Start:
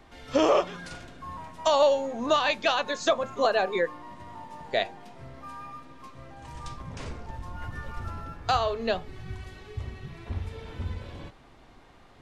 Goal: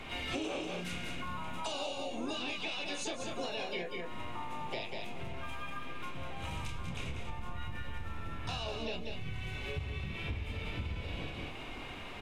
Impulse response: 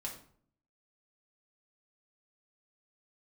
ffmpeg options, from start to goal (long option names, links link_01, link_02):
-filter_complex "[0:a]superequalizer=12b=3.55:14b=0.562,acrossover=split=330|3000[link_01][link_02][link_03];[link_02]acompressor=threshold=-42dB:ratio=3[link_04];[link_01][link_04][link_03]amix=inputs=3:normalize=0,asplit=2[link_05][link_06];[link_06]adelay=28,volume=-4dB[link_07];[link_05][link_07]amix=inputs=2:normalize=0,acrossover=split=410|910[link_08][link_09][link_10];[link_10]alimiter=level_in=2dB:limit=-24dB:level=0:latency=1:release=32,volume=-2dB[link_11];[link_08][link_09][link_11]amix=inputs=3:normalize=0,asplit=3[link_12][link_13][link_14];[link_13]asetrate=37084,aresample=44100,atempo=1.18921,volume=-15dB[link_15];[link_14]asetrate=58866,aresample=44100,atempo=0.749154,volume=-6dB[link_16];[link_12][link_15][link_16]amix=inputs=3:normalize=0,asplit=2[link_17][link_18];[link_18]aecho=0:1:192:0.473[link_19];[link_17][link_19]amix=inputs=2:normalize=0,acompressor=threshold=-41dB:ratio=6,volume=5.5dB"